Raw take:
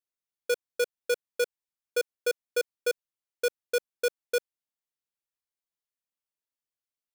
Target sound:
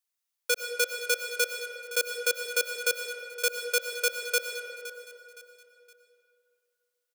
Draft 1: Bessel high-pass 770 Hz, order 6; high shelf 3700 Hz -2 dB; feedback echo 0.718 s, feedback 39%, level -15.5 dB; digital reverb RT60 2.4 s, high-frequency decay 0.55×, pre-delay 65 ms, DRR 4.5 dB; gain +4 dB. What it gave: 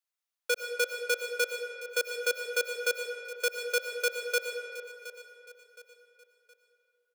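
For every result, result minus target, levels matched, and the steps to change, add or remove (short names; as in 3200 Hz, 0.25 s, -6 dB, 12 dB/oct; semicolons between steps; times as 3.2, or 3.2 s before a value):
echo 0.202 s late; 8000 Hz band -3.5 dB
change: feedback echo 0.516 s, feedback 39%, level -15.5 dB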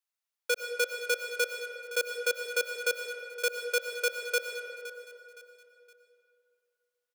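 8000 Hz band -3.5 dB
change: high shelf 3700 Hz +5.5 dB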